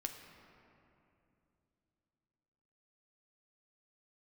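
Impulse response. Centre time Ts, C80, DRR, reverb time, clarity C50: 51 ms, 7.0 dB, 4.0 dB, 2.8 s, 6.0 dB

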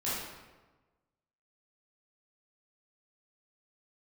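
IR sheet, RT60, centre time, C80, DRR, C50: 1.2 s, 87 ms, 2.0 dB, -10.5 dB, -1.5 dB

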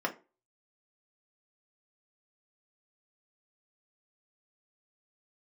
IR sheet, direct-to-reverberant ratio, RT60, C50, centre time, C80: 0.5 dB, 0.30 s, 15.0 dB, 9 ms, 22.5 dB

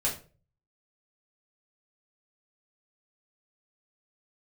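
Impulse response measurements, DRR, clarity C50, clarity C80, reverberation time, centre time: -4.5 dB, 9.5 dB, 14.5 dB, 0.40 s, 22 ms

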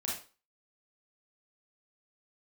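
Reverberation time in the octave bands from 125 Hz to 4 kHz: 0.35 s, 0.35 s, 0.35 s, 0.35 s, 0.30 s, 0.35 s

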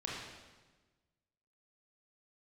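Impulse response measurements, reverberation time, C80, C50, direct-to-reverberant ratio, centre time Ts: 1.3 s, 2.0 dB, -1.0 dB, -5.0 dB, 83 ms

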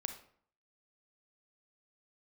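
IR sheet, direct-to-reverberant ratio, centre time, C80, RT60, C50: 7.0 dB, 13 ms, 13.0 dB, 0.55 s, 9.0 dB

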